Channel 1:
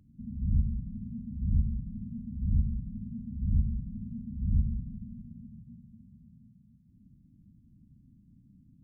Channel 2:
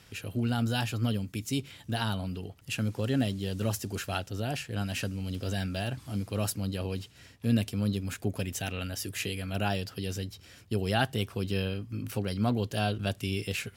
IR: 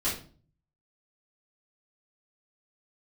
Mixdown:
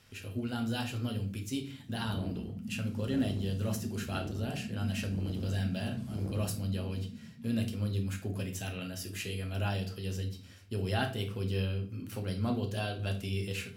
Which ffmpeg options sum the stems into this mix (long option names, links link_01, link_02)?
-filter_complex "[0:a]asoftclip=type=hard:threshold=-30.5dB,highpass=270,lowshelf=frequency=350:gain=11,adelay=1700,volume=-1.5dB[link_01];[1:a]volume=-8.5dB,asplit=2[link_02][link_03];[link_03]volume=-8.5dB[link_04];[2:a]atrim=start_sample=2205[link_05];[link_04][link_05]afir=irnorm=-1:irlink=0[link_06];[link_01][link_02][link_06]amix=inputs=3:normalize=0"